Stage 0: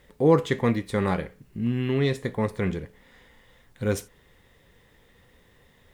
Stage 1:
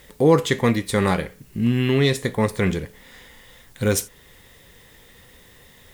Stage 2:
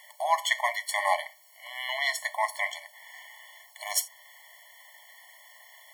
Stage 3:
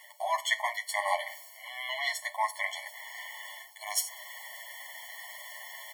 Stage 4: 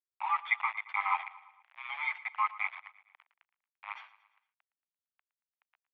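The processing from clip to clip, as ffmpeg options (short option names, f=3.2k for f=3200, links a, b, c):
-filter_complex "[0:a]asplit=2[a][b];[b]alimiter=limit=-18dB:level=0:latency=1:release=435,volume=0.5dB[c];[a][c]amix=inputs=2:normalize=0,highshelf=f=3.4k:g=11"
-af "afftfilt=real='re*eq(mod(floor(b*sr/1024/580),2),1)':imag='im*eq(mod(floor(b*sr/1024/580),2),1)':win_size=1024:overlap=0.75,volume=1.5dB"
-filter_complex "[0:a]areverse,acompressor=mode=upward:threshold=-30dB:ratio=2.5,areverse,asplit=2[a][b];[b]adelay=9.5,afreqshift=-0.92[c];[a][c]amix=inputs=2:normalize=1"
-af "aeval=exprs='val(0)*gte(abs(val(0)),0.0224)':c=same,aecho=1:1:114|228|342|456:0.126|0.0667|0.0354|0.0187,highpass=f=590:t=q:w=0.5412,highpass=f=590:t=q:w=1.307,lowpass=f=2.5k:t=q:w=0.5176,lowpass=f=2.5k:t=q:w=0.7071,lowpass=f=2.5k:t=q:w=1.932,afreqshift=190"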